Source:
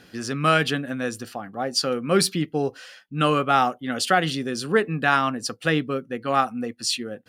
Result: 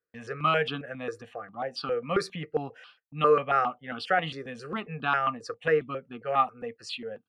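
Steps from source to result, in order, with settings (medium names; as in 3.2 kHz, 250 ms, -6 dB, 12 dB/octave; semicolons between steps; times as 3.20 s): gate -43 dBFS, range -34 dB; low-pass 3.6 kHz 12 dB/octave; bass shelf 170 Hz -6.5 dB; small resonant body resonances 460/1200 Hz, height 11 dB, ringing for 80 ms; stepped phaser 7.4 Hz 830–1900 Hz; trim -3.5 dB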